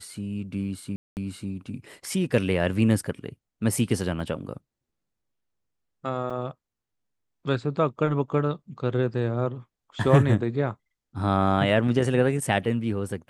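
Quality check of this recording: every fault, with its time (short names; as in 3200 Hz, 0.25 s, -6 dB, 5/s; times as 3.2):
0.96–1.17 gap 0.209 s
4.2 gap 3 ms
6.3 gap 4.8 ms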